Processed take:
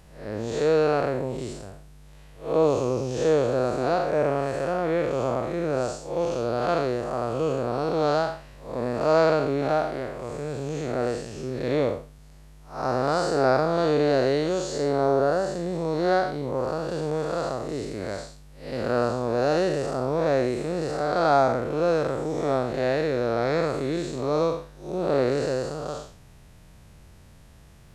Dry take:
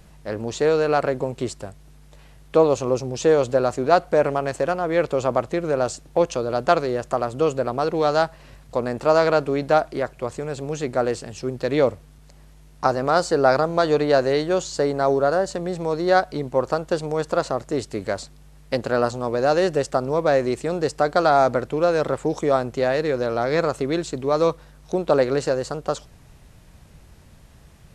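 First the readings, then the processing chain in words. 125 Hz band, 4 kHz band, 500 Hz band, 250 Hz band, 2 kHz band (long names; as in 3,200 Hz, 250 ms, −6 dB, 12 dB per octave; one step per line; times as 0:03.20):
−1.0 dB, −3.5 dB, −3.5 dB, −2.0 dB, −4.5 dB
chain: spectrum smeared in time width 178 ms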